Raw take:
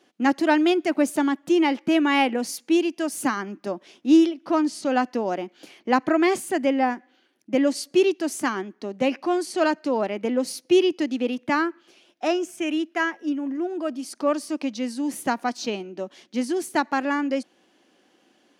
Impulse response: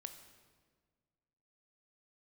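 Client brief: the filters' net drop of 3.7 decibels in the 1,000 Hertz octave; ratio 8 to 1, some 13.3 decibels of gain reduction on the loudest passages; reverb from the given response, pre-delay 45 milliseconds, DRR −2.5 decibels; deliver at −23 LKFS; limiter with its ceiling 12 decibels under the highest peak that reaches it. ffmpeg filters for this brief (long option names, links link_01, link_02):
-filter_complex "[0:a]equalizer=frequency=1000:width_type=o:gain=-5,acompressor=threshold=-27dB:ratio=8,alimiter=level_in=4.5dB:limit=-24dB:level=0:latency=1,volume=-4.5dB,asplit=2[link_01][link_02];[1:a]atrim=start_sample=2205,adelay=45[link_03];[link_02][link_03]afir=irnorm=-1:irlink=0,volume=7dB[link_04];[link_01][link_04]amix=inputs=2:normalize=0,volume=9.5dB"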